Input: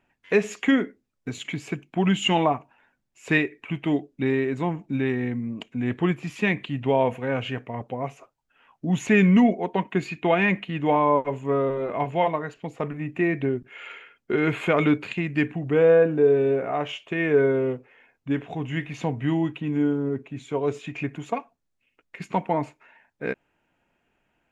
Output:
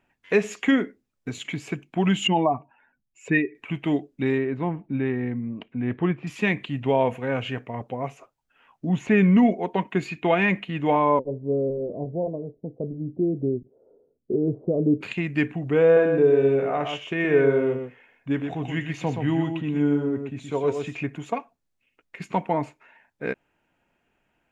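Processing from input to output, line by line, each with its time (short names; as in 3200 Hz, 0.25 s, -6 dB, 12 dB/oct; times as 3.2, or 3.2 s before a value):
2.27–3.55 spectral contrast raised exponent 1.6
4.38–6.27 air absorption 350 m
8.89–9.43 LPF 2000 Hz 6 dB/oct
11.19–15.01 steep low-pass 560 Hz
15.84–20.97 echo 0.124 s -6 dB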